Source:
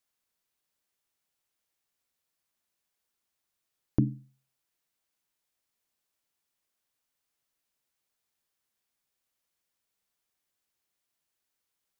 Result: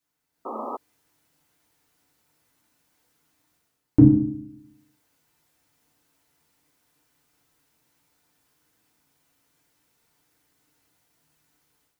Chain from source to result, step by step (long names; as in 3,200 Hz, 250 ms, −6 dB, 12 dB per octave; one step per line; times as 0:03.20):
parametric band 170 Hz +4.5 dB 1.6 octaves
feedback delay network reverb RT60 0.59 s, low-frequency decay 1.35×, high-frequency decay 0.35×, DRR −5 dB
automatic gain control gain up to 12 dB
sound drawn into the spectrogram noise, 0:00.45–0:00.77, 210–1,300 Hz −30 dBFS
level −2 dB